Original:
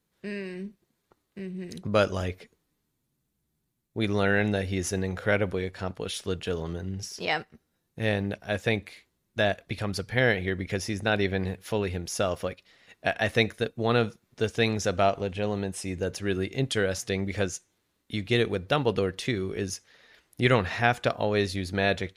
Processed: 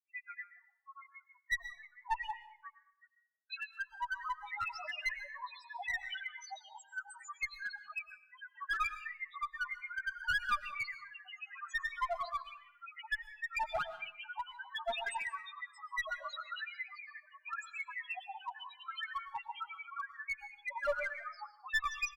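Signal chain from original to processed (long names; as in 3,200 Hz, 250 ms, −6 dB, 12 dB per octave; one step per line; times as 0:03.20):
Chebyshev high-pass filter 830 Hz, order 10
noise gate with hold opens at −60 dBFS
comb filter 3.6 ms, depth 47%
in parallel at +2 dB: downward compressor 10 to 1, threshold −37 dBFS, peak gain reduction 17 dB
on the sum: mid-hump overdrive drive 14 dB, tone 1,200 Hz, clips at −8.5 dBFS
granular cloud 70 ms, grains 22 per second, spray 684 ms, pitch spread up and down by 7 semitones
square-wave tremolo 0.69 Hz, depth 60%, duty 55%
spectral peaks only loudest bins 2
asymmetric clip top −35 dBFS
on a send at −12 dB: convolution reverb RT60 0.65 s, pre-delay 80 ms
on the sum: level +1.5 dB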